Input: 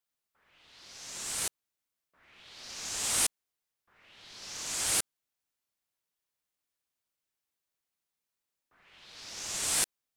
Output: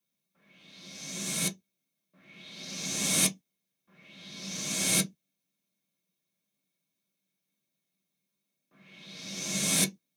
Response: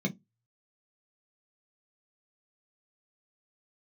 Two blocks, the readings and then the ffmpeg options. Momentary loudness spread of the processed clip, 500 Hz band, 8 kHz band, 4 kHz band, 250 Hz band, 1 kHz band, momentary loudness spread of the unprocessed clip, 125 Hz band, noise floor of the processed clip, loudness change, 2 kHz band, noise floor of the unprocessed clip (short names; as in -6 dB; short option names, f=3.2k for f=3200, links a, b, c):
18 LU, +6.5 dB, +2.0 dB, +3.5 dB, +16.5 dB, -1.0 dB, 19 LU, +15.0 dB, -84 dBFS, +2.5 dB, +4.5 dB, under -85 dBFS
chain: -filter_complex "[0:a]highshelf=f=3k:g=9.5[a];[1:a]atrim=start_sample=2205,atrim=end_sample=6615[b];[a][b]afir=irnorm=-1:irlink=0,volume=-3dB"